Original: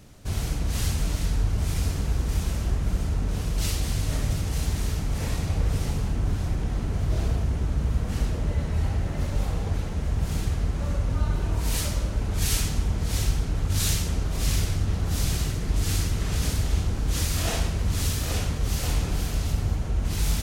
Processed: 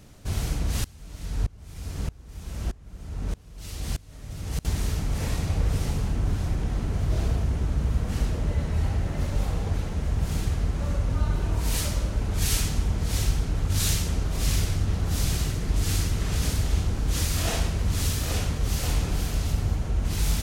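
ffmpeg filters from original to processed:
ffmpeg -i in.wav -filter_complex "[0:a]asettb=1/sr,asplit=3[link_01][link_02][link_03];[link_01]atrim=end=0.844[link_04];[link_02]atrim=start=0.84:end=4.65,asetpts=PTS-STARTPTS,afade=type=in:duration=0.004:curve=qsin,afade=type=out:start_time=3.806:duration=0.004:curve=qsin,aeval=exprs='val(0)*pow(10,-26*if(lt(mod(-1.6*n/s,1),2*abs(-1.6)/1000),1-mod(-1.6*n/s,1)/(2*abs(-1.6)/1000),(mod(-1.6*n/s,1)-2*abs(-1.6)/1000)/(1-2*abs(-1.6)/1000))/20)':channel_layout=same[link_05];[link_03]atrim=start=4.646[link_06];[link_04][link_05]acrossfade=duration=0.004:curve1=hsin:curve2=qsin[link_07];[link_07][link_06]acrossfade=duration=0.004:curve1=qsin:curve2=hsin" out.wav

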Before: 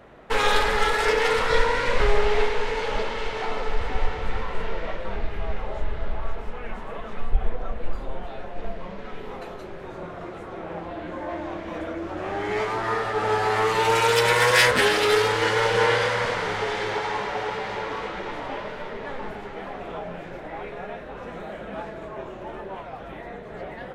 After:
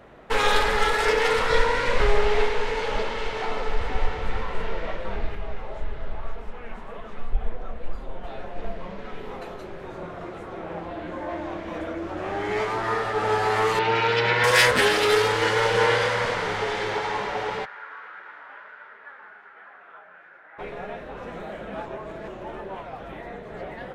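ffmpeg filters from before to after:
ffmpeg -i in.wav -filter_complex "[0:a]asettb=1/sr,asplit=3[link_01][link_02][link_03];[link_01]atrim=end=5.354[link_04];[link_02]atrim=start=5.35:end=8.24,asetpts=PTS-STARTPTS,afade=type=in:duration=0.004:curve=qsin,afade=type=out:start_time=2.886:duration=0.004:curve=qsin,flanger=delay=4.1:depth=9.3:regen=-44:speed=1.9:shape=sinusoidal[link_05];[link_03]atrim=start=8.236[link_06];[link_04][link_05]acrossfade=duration=0.004:curve1=hsin:curve2=qsin[link_07];[link_07][link_06]acrossfade=duration=0.004:curve1=qsin:curve2=hsin,asettb=1/sr,asplit=3[link_08][link_09][link_10];[link_08]atrim=end=13.794[link_11];[link_09]atrim=start=13.79:end=14.44,asetpts=PTS-STARTPTS,afade=type=in:duration=0.004:curve=qsin,afade=type=out:start_time=0.646:duration=0.004:curve=qsin,highpass=110,equalizer=frequency=130:width_type=q:width=4:gain=5,equalizer=frequency=270:width_type=q:width=4:gain=5,equalizer=frequency=520:width_type=q:width=4:gain=-6,equalizer=frequency=1100:width_type=q:width=4:gain=-6,equalizer=frequency=3500:width_type=q:width=4:gain=-3,lowpass=frequency=4200:width=0.5412,lowpass=frequency=4200:width=1.3066[link_12];[link_10]atrim=start=14.436[link_13];[link_11][link_12]acrossfade=duration=0.004:curve1=hsin:curve2=qsin[link_14];[link_14][link_13]acrossfade=duration=0.004:curve1=qsin:curve2=hsin,asplit=3[link_15][link_16][link_17];[link_15]afade=type=out:start_time=17.64:duration=0.02[link_18];[link_16]bandpass=frequency=1500:width_type=q:width=4.4,afade=type=in:start_time=17.64:duration=0.02,afade=type=out:start_time=20.58:duration=0.02[link_19];[link_17]afade=type=in:start_time=20.58:duration=0.02[link_20];[link_18][link_19][link_20]amix=inputs=3:normalize=0,asplit=3[link_21][link_22][link_23];[link_21]atrim=end=21.862[link_24];[link_22]atrim=start=21.858:end=22.282,asetpts=PTS-STARTPTS,areverse[link_25];[link_23]atrim=start=22.278[link_26];[link_24][link_25]acrossfade=duration=0.004:curve1=hsin:curve2=hsin[link_27];[link_27][link_26]acrossfade=duration=0.004:curve1=hsin:curve2=hsin" out.wav

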